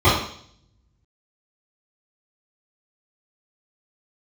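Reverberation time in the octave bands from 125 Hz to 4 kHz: 0.90, 0.70, 0.60, 0.55, 0.60, 0.70 s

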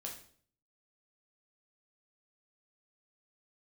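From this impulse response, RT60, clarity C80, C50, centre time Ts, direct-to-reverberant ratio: 0.55 s, 11.0 dB, 7.0 dB, 25 ms, -1.5 dB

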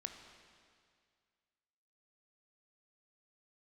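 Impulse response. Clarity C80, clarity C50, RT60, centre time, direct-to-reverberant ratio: 7.5 dB, 6.5 dB, 2.1 s, 41 ms, 5.0 dB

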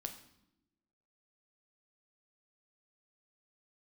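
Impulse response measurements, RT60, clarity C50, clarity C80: not exponential, 10.5 dB, 13.0 dB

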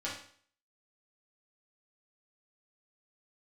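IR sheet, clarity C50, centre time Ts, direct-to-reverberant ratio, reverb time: 4.5 dB, 36 ms, -7.5 dB, 0.50 s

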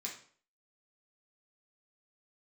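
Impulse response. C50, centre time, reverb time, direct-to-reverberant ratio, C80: 7.0 dB, 24 ms, 0.50 s, -3.5 dB, 12.0 dB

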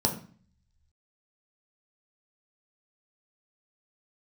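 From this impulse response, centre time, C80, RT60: 16 ms, 14.0 dB, 0.45 s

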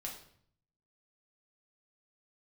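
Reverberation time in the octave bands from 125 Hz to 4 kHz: 1.0, 0.80, 0.60, 0.60, 0.55, 0.50 s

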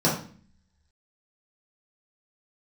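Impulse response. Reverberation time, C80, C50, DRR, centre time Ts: 0.45 s, 10.0 dB, 5.5 dB, -7.0 dB, 32 ms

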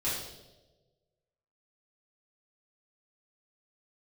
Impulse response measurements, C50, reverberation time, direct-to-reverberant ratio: 1.5 dB, 1.2 s, -10.0 dB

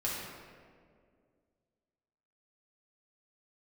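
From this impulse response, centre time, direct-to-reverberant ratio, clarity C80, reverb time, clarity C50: 0.102 s, -6.5 dB, 1.5 dB, 2.1 s, -1.0 dB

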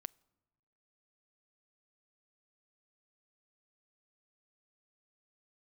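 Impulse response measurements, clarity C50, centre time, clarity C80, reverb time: 27.5 dB, 2 ms, 29.5 dB, 1.1 s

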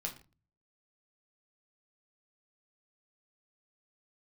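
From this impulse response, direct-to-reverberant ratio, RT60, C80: 1.0 dB, not exponential, 16.5 dB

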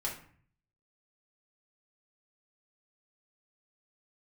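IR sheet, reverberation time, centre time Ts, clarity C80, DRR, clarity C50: 0.50 s, 25 ms, 12.0 dB, -4.0 dB, 7.0 dB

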